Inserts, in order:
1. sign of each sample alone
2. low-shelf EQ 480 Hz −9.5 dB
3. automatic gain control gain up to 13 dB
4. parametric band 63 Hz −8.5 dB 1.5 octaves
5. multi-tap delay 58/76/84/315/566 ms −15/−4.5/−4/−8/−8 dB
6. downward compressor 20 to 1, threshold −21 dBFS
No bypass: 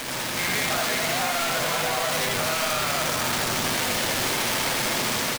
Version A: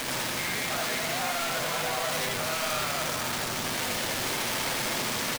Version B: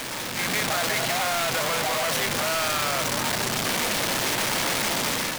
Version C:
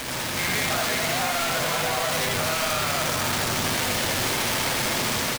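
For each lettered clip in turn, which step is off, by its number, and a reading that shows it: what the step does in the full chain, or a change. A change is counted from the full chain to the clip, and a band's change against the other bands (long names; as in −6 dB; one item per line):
3, change in integrated loudness −5.0 LU
5, change in crest factor −3.0 dB
4, 125 Hz band +3.0 dB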